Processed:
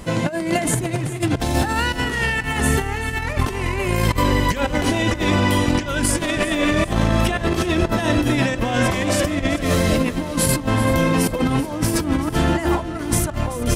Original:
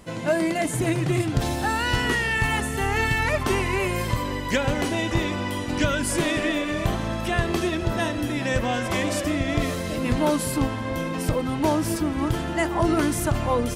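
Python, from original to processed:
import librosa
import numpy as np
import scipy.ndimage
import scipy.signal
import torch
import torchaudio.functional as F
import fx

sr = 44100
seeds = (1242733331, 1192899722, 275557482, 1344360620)

p1 = fx.low_shelf(x, sr, hz=110.0, db=5.0)
p2 = fx.over_compress(p1, sr, threshold_db=-26.0, ratio=-0.5)
p3 = p2 + fx.echo_feedback(p2, sr, ms=384, feedback_pct=45, wet_db=-14.5, dry=0)
y = F.gain(torch.from_numpy(p3), 6.5).numpy()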